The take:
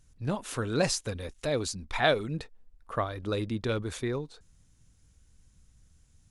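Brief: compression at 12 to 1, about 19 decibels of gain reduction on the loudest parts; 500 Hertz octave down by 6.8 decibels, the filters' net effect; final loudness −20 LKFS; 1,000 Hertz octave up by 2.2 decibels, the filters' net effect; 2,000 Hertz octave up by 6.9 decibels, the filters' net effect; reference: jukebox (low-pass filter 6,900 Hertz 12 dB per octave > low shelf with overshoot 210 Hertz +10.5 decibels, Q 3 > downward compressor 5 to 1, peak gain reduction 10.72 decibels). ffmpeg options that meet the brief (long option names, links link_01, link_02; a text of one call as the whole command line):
ffmpeg -i in.wav -af "equalizer=frequency=500:width_type=o:gain=-8,equalizer=frequency=1000:width_type=o:gain=4.5,equalizer=frequency=2000:width_type=o:gain=8,acompressor=threshold=-35dB:ratio=12,lowpass=6900,lowshelf=frequency=210:width_type=q:width=3:gain=10.5,acompressor=threshold=-31dB:ratio=5,volume=16.5dB" out.wav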